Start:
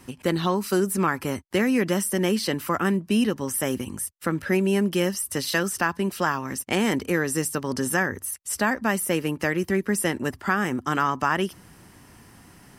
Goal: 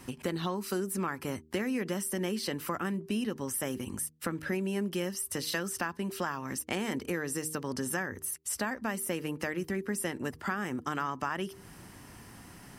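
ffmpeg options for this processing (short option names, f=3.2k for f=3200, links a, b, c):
-af "acompressor=threshold=-34dB:ratio=2.5,bandreject=f=78:t=h:w=4,bandreject=f=156:t=h:w=4,bandreject=f=234:t=h:w=4,bandreject=f=312:t=h:w=4,bandreject=f=390:t=h:w=4,bandreject=f=468:t=h:w=4"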